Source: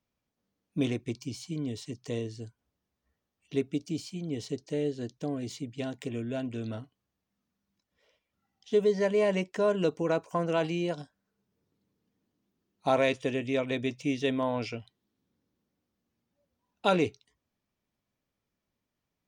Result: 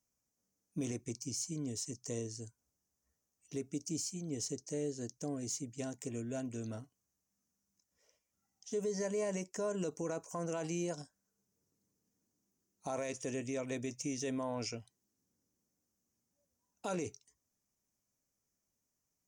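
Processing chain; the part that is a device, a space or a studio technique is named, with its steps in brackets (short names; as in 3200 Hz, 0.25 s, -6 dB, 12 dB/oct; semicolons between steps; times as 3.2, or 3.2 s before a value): over-bright horn tweeter (resonant high shelf 4800 Hz +10 dB, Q 3; limiter -22 dBFS, peak gain reduction 10 dB); gain -6 dB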